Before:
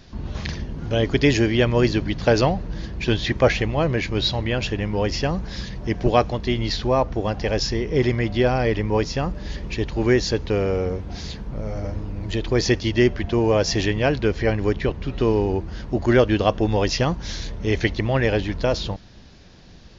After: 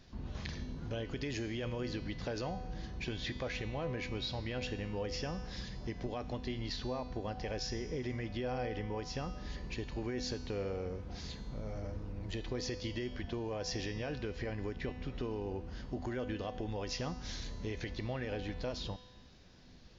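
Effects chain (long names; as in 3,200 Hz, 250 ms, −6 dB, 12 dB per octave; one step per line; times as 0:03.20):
brickwall limiter −13.5 dBFS, peak gain reduction 10 dB
downward compressor, threshold −23 dBFS, peak gain reduction 6 dB
tuned comb filter 250 Hz, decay 1.3 s, mix 80%
level +1.5 dB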